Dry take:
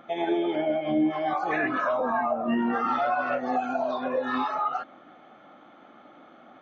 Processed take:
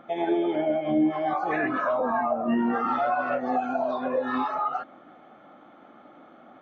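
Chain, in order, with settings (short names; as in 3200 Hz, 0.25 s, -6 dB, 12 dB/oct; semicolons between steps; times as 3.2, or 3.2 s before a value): high shelf 2300 Hz -8 dB; gain +1.5 dB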